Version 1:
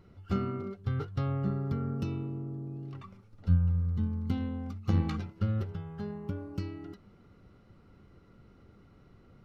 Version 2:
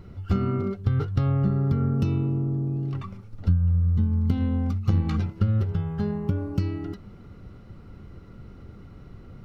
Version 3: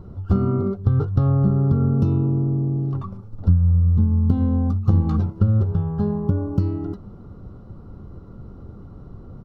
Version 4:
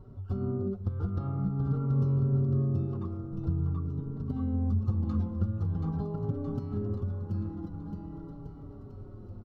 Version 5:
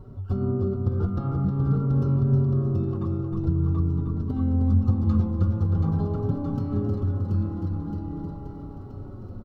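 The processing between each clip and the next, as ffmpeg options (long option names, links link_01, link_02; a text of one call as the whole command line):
ffmpeg -i in.wav -af "lowshelf=frequency=160:gain=8,acompressor=threshold=-28dB:ratio=4,volume=8.5dB" out.wav
ffmpeg -i in.wav -af "firequalizer=gain_entry='entry(1100,0);entry(2100,-20);entry(3600,-11)':delay=0.05:min_phase=1,volume=5dB" out.wav
ffmpeg -i in.wav -filter_complex "[0:a]acompressor=threshold=-18dB:ratio=6,aecho=1:1:730|1350|1878|2326|2707:0.631|0.398|0.251|0.158|0.1,asplit=2[link_01][link_02];[link_02]adelay=4.8,afreqshift=-0.46[link_03];[link_01][link_03]amix=inputs=2:normalize=1,volume=-6.5dB" out.wav
ffmpeg -i in.wav -af "aecho=1:1:312|624|936|1248|1560:0.531|0.202|0.0767|0.0291|0.0111,volume=6dB" out.wav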